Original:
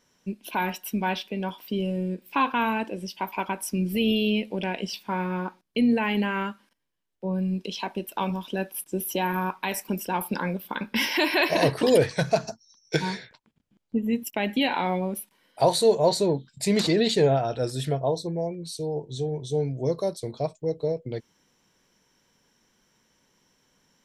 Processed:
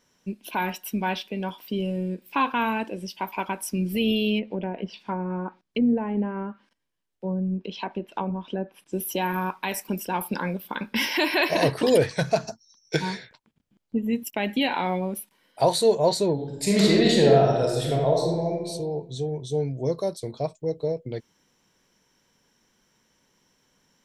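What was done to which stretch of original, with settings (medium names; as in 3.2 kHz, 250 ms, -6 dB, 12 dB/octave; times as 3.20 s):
4.38–8.93 s: low-pass that closes with the level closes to 750 Hz, closed at -23.5 dBFS
16.33–18.67 s: reverb throw, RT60 1.2 s, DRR -1.5 dB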